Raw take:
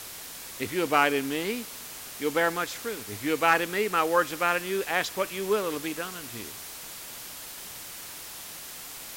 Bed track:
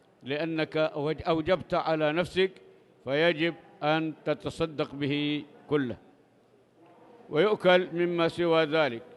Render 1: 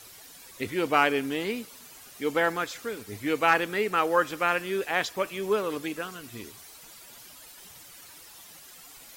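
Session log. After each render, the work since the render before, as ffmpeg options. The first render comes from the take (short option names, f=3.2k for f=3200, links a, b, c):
-af "afftdn=nr=11:nf=-42"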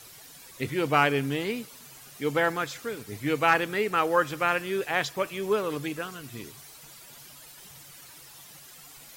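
-af "equalizer=f=140:t=o:w=0.23:g=14.5"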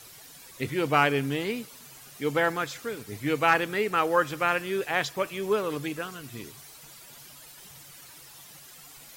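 -af anull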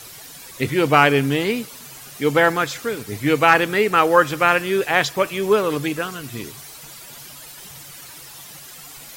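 -af "volume=9dB,alimiter=limit=-1dB:level=0:latency=1"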